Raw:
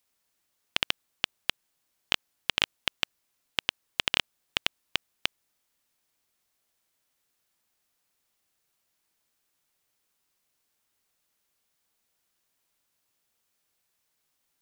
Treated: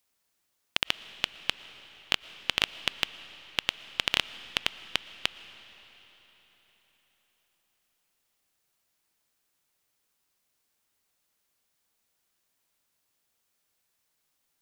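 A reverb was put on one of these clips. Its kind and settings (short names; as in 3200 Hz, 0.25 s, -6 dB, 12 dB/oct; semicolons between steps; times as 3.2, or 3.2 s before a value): digital reverb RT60 4.3 s, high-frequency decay 0.9×, pre-delay 75 ms, DRR 14.5 dB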